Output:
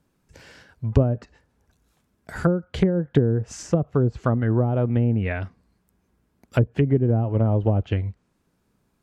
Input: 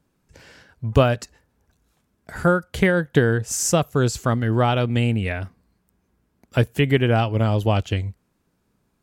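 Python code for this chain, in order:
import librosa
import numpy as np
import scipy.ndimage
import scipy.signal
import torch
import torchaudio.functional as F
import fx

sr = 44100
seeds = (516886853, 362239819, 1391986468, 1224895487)

y = fx.env_lowpass_down(x, sr, base_hz=410.0, full_db=-14.0)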